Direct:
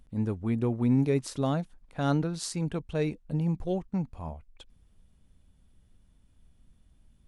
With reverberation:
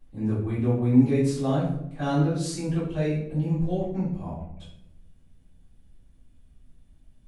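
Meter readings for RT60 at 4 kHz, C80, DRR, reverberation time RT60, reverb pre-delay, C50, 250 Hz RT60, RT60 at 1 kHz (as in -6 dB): 0.50 s, 6.5 dB, -12.5 dB, 0.80 s, 3 ms, 2.0 dB, 1.2 s, 0.70 s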